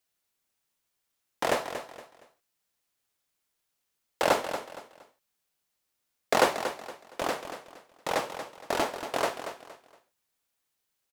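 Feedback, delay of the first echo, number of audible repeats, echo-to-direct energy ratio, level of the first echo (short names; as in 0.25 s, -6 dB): 30%, 0.233 s, 3, -9.5 dB, -10.0 dB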